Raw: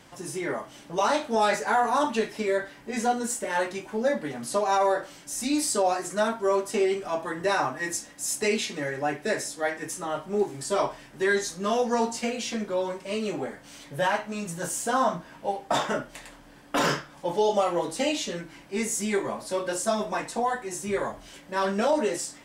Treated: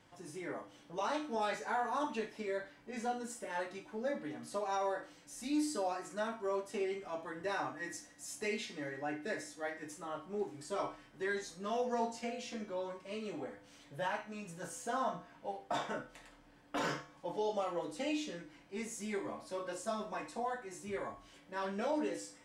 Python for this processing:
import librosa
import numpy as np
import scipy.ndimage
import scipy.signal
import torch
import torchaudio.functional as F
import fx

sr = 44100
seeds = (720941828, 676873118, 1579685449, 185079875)

y = fx.high_shelf(x, sr, hz=7400.0, db=-9.5)
y = fx.comb_fb(y, sr, f0_hz=100.0, decay_s=0.47, harmonics='odd', damping=0.0, mix_pct=70)
y = fx.room_flutter(y, sr, wall_m=9.6, rt60_s=0.21)
y = F.gain(torch.from_numpy(y), -3.0).numpy()